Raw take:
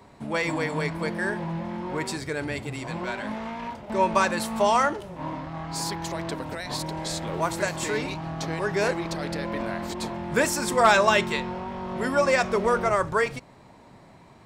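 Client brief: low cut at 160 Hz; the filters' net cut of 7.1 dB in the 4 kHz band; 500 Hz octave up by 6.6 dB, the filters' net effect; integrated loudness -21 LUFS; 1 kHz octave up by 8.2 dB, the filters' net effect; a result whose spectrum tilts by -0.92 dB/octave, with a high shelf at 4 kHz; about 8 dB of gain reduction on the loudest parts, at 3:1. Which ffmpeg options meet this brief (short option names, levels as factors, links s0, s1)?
-af "highpass=160,equalizer=f=500:t=o:g=5.5,equalizer=f=1000:t=o:g=9,highshelf=f=4000:g=-4.5,equalizer=f=4000:t=o:g=-7,acompressor=threshold=0.141:ratio=3,volume=1.41"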